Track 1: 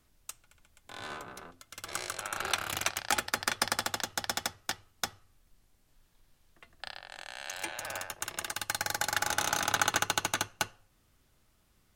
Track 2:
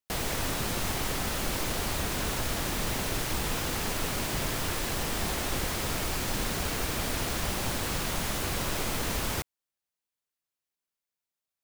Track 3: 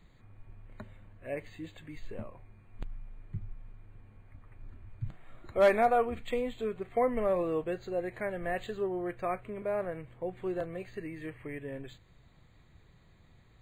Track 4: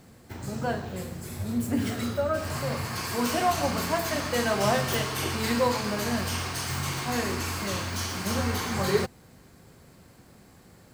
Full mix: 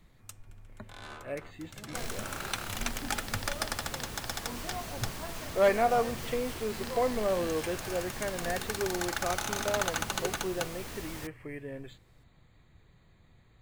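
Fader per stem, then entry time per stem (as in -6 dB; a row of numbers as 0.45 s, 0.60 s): -4.5 dB, -11.5 dB, -0.5 dB, -16.0 dB; 0.00 s, 1.85 s, 0.00 s, 1.30 s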